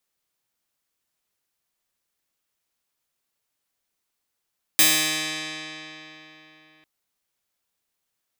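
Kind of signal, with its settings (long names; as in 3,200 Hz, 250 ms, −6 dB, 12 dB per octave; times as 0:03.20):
Karplus-Strong string D#3, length 2.05 s, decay 3.82 s, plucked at 0.11, bright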